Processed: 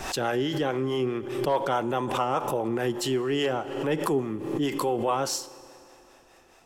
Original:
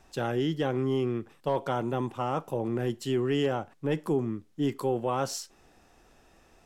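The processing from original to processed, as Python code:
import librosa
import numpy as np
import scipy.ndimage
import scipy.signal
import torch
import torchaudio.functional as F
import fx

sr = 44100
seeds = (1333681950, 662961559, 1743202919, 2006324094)

p1 = fx.low_shelf(x, sr, hz=300.0, db=-10.5)
p2 = fx.rider(p1, sr, range_db=10, speed_s=0.5)
p3 = p1 + F.gain(torch.from_numpy(p2), -2.0).numpy()
p4 = fx.harmonic_tremolo(p3, sr, hz=4.8, depth_pct=50, crossover_hz=470.0)
p5 = fx.rev_fdn(p4, sr, rt60_s=3.1, lf_ratio=1.0, hf_ratio=0.8, size_ms=17.0, drr_db=16.5)
p6 = fx.pre_swell(p5, sr, db_per_s=53.0)
y = F.gain(torch.from_numpy(p6), 2.5).numpy()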